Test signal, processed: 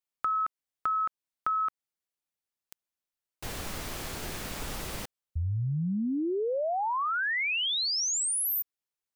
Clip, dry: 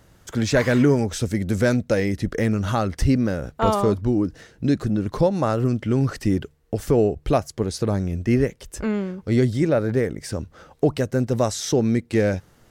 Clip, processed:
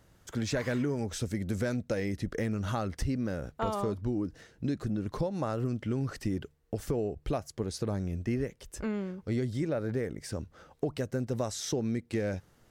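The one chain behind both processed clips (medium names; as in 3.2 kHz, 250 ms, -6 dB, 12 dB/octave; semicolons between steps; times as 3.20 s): compression, threshold -19 dBFS; trim -8 dB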